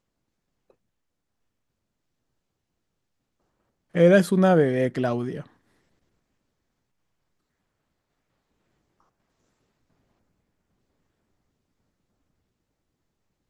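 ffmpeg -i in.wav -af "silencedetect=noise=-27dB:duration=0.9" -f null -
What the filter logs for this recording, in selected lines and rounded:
silence_start: 0.00
silence_end: 3.95 | silence_duration: 3.95
silence_start: 5.40
silence_end: 13.49 | silence_duration: 8.09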